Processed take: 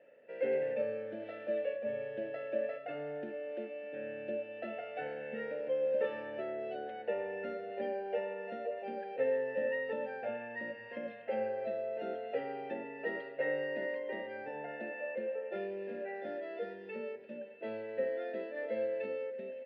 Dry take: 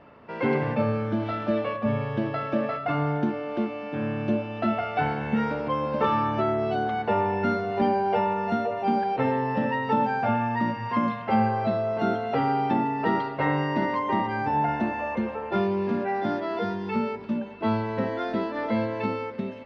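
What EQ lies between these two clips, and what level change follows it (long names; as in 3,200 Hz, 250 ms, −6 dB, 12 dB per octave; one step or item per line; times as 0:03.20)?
formant filter e
high-pass filter 92 Hz
0.0 dB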